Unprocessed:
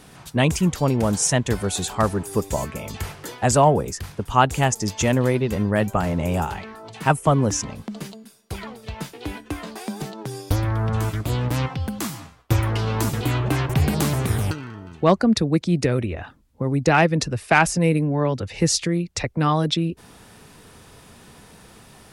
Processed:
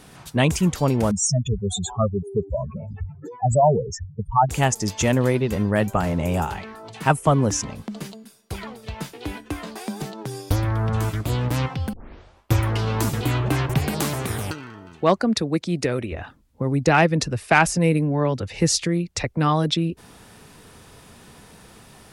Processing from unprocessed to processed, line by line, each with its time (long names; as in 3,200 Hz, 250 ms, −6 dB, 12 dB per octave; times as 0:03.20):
0:01.11–0:04.49: expanding power law on the bin magnitudes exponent 3.9
0:11.93: tape start 0.59 s
0:13.78–0:16.12: low-shelf EQ 180 Hz −9.5 dB